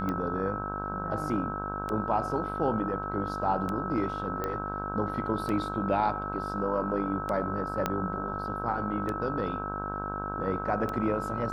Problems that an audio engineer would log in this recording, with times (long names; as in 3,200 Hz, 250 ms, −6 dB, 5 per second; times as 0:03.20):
mains buzz 50 Hz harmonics 32 −37 dBFS
scratch tick 33 1/3 rpm −20 dBFS
whistle 1,300 Hz −35 dBFS
0:04.44: click −18 dBFS
0:07.86: click −13 dBFS